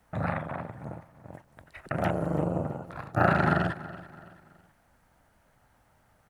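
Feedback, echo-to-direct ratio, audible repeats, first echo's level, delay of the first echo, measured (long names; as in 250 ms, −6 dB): 39%, −16.5 dB, 3, −17.0 dB, 330 ms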